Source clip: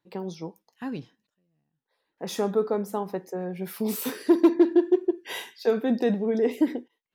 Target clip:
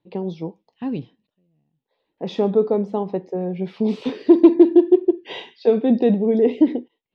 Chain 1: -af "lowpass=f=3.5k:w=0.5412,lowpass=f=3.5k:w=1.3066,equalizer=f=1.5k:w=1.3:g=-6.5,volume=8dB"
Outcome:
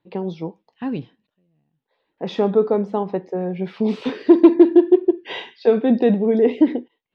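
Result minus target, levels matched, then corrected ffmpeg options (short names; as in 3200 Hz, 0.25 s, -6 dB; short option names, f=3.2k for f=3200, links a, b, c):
2000 Hz band +4.5 dB
-af "lowpass=f=3.5k:w=0.5412,lowpass=f=3.5k:w=1.3066,equalizer=f=1.5k:w=1.3:g=-15,volume=8dB"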